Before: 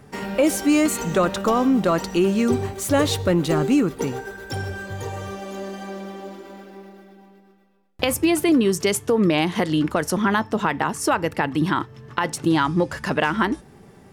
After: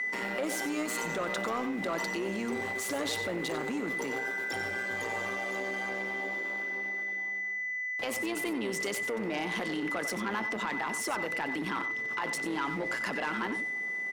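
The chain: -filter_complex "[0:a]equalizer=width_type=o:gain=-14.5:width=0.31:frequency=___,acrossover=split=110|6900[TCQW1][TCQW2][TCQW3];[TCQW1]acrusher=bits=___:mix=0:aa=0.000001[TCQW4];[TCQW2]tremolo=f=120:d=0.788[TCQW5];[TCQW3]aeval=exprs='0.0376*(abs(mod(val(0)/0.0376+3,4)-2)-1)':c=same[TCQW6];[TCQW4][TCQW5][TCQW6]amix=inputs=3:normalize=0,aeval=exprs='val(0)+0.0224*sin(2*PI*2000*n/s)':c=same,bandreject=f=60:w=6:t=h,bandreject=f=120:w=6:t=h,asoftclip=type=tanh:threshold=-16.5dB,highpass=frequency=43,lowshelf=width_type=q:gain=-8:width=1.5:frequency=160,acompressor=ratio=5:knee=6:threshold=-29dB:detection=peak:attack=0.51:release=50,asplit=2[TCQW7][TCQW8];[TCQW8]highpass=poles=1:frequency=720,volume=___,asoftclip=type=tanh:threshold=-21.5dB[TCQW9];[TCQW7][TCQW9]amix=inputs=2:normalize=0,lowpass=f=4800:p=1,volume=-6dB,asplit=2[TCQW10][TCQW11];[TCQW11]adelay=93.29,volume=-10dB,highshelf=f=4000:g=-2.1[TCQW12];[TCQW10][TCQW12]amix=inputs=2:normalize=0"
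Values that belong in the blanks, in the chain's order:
71, 7, 9dB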